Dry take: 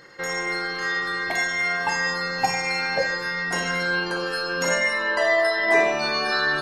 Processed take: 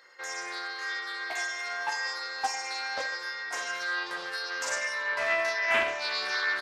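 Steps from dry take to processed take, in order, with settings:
high-pass filter 650 Hz 12 dB per octave
double-tracking delay 14 ms −5 dB
highs frequency-modulated by the lows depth 0.22 ms
level −8 dB

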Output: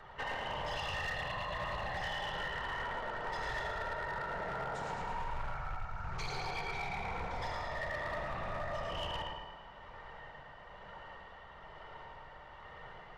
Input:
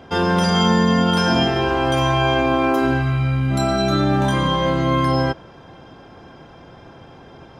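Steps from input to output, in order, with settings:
random phases in short frames
octave-band graphic EQ 125/500/2,000/8,000 Hz −9/−12/+8/+6 dB
amplitude tremolo 1.9 Hz, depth 32%
parametric band 360 Hz −12 dB 2 octaves
downward compressor 12 to 1, threshold −32 dBFS, peak gain reduction 17 dB
flutter between parallel walls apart 11 metres, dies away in 0.8 s
convolution reverb RT60 0.35 s, pre-delay 37 ms, DRR 3.5 dB
wrong playback speed 78 rpm record played at 45 rpm
gain into a clipping stage and back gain 27.5 dB
highs frequency-modulated by the lows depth 0.22 ms
level −5.5 dB

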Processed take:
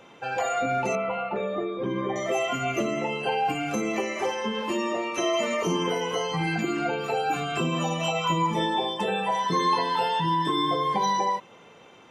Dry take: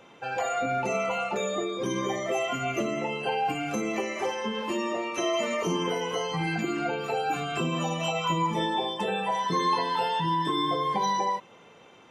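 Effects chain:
0:00.95–0:02.16: high-frequency loss of the air 440 metres
level +2 dB

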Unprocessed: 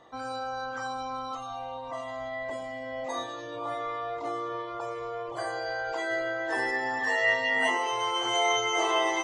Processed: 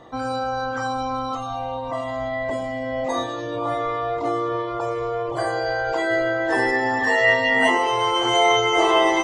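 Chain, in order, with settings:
low-shelf EQ 420 Hz +9.5 dB
notch filter 6,200 Hz, Q 25
level +6.5 dB

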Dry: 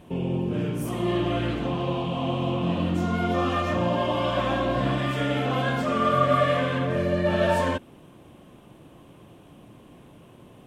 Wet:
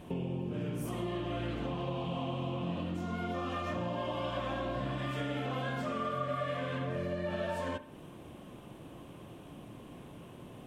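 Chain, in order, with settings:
downward compressor 5 to 1, threshold −34 dBFS, peak gain reduction 16 dB
convolution reverb, pre-delay 52 ms, DRR 14 dB

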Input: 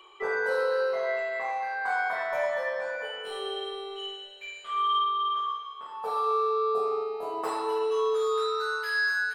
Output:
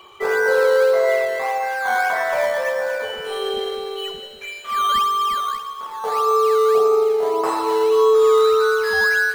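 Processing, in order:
in parallel at −11 dB: sample-and-hold swept by an LFO 12×, swing 100% 1.7 Hz
on the sum: feedback echo at a low word length 82 ms, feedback 80%, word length 9 bits, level −15 dB
level +7 dB

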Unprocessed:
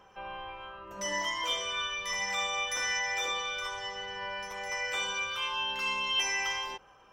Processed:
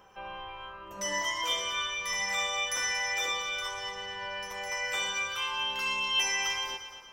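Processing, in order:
high-shelf EQ 8,600 Hz +8.5 dB
echo machine with several playback heads 116 ms, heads first and second, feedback 47%, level −15 dB

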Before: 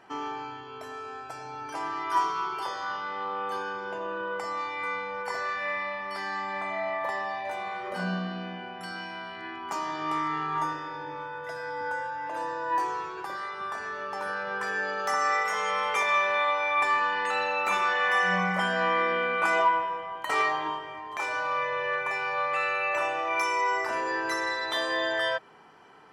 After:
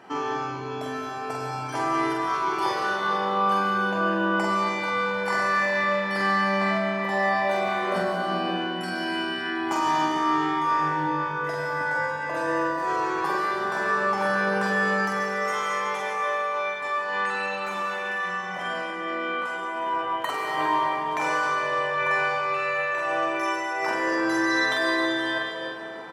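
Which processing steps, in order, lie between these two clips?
high-pass filter 160 Hz 12 dB per octave
low-shelf EQ 260 Hz +9.5 dB
compressor whose output falls as the input rises −31 dBFS, ratio −1
double-tracking delay 46 ms −3 dB
convolution reverb RT60 3.0 s, pre-delay 83 ms, DRR 0.5 dB
level +1.5 dB

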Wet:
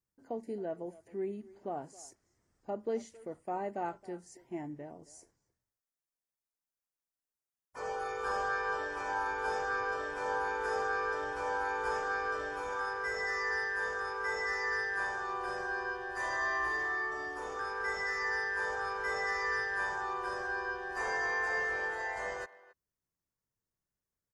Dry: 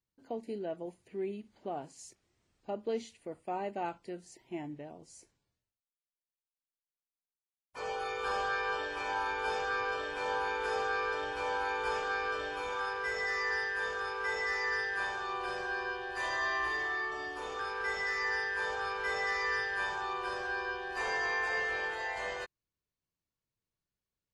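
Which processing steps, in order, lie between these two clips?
flat-topped bell 3,200 Hz −10 dB 1.1 octaves
far-end echo of a speakerphone 270 ms, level −19 dB

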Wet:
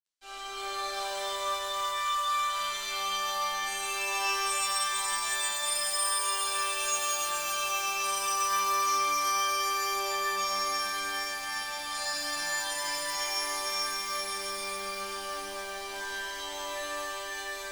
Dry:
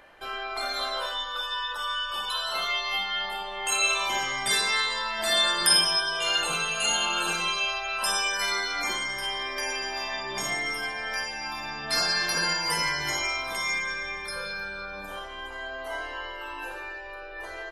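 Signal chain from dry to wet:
resonators tuned to a chord G3 fifth, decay 0.29 s
feedback echo with a high-pass in the loop 135 ms, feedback 81%, high-pass 210 Hz, level −11.5 dB
dead-zone distortion −55.5 dBFS
octave-band graphic EQ 125/4,000/8,000 Hz −9/+7/+10 dB
downward compressor 2.5 to 1, threshold −43 dBFS, peak gain reduction 12.5 dB
reverb with rising layers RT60 3.6 s, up +12 semitones, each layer −8 dB, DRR −8.5 dB
level +2.5 dB

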